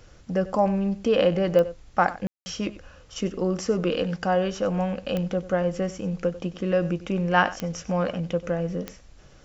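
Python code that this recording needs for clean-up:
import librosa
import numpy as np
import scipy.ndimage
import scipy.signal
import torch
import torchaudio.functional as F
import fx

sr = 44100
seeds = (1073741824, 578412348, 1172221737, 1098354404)

y = fx.fix_declick_ar(x, sr, threshold=10.0)
y = fx.fix_ambience(y, sr, seeds[0], print_start_s=8.93, print_end_s=9.43, start_s=2.27, end_s=2.46)
y = fx.fix_echo_inverse(y, sr, delay_ms=95, level_db=-16.5)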